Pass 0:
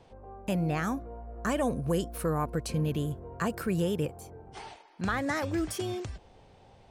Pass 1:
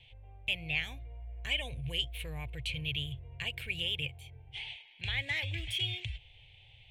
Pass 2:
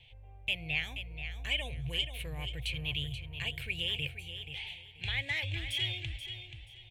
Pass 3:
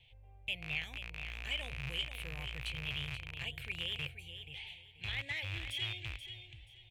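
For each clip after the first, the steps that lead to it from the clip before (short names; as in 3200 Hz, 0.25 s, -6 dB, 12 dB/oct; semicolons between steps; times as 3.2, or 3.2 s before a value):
EQ curve 130 Hz 0 dB, 190 Hz -27 dB, 520 Hz -17 dB, 870 Hz -15 dB, 1300 Hz -28 dB, 2200 Hz +10 dB, 3300 Hz +14 dB, 5100 Hz -13 dB, 7700 Hz -10 dB
feedback echo 0.481 s, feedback 26%, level -9.5 dB
rattling part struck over -40 dBFS, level -25 dBFS; gain -5.5 dB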